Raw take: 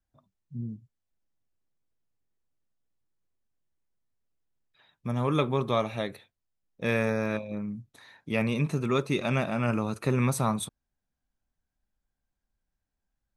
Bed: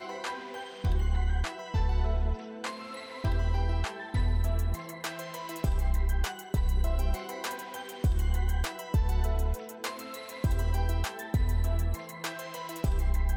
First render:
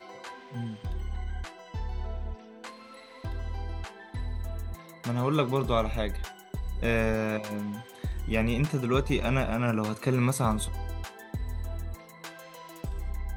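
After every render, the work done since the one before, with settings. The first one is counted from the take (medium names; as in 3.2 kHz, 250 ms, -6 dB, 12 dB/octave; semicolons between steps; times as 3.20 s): add bed -7 dB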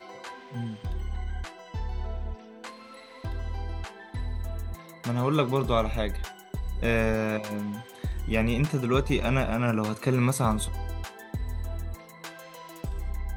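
trim +1.5 dB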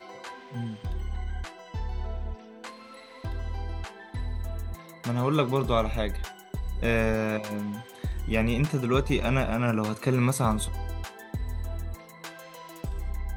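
no audible change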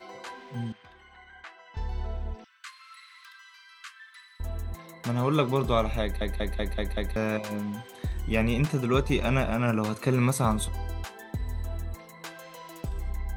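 0.72–1.77 s: band-pass filter 1.7 kHz, Q 1.1; 2.44–4.40 s: steep high-pass 1.1 kHz 96 dB/octave; 6.02 s: stutter in place 0.19 s, 6 plays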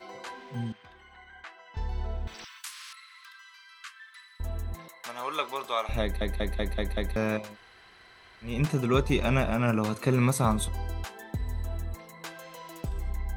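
2.27–2.93 s: spectrum-flattening compressor 10:1; 4.88–5.89 s: high-pass 820 Hz; 7.45–8.53 s: room tone, crossfade 0.24 s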